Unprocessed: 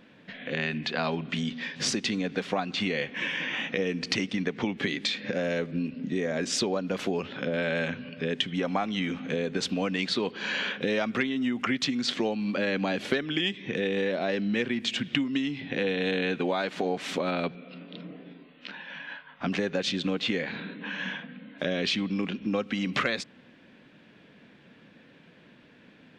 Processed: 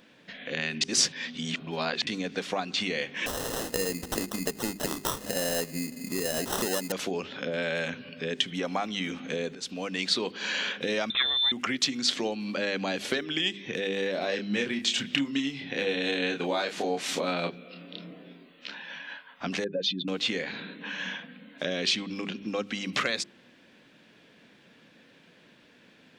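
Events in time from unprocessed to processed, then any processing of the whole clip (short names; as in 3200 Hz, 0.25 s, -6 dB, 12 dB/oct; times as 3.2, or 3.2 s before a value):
0.81–2.07 reverse
3.26–6.92 sample-rate reducer 2300 Hz
9.55–10.16 fade in equal-power, from -17 dB
11.1–11.52 inverted band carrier 3800 Hz
14.12–18.95 doubler 29 ms -5.5 dB
19.64–20.08 spectral contrast raised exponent 2.2
whole clip: tone controls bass -4 dB, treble +10 dB; de-hum 49.75 Hz, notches 8; gain -1.5 dB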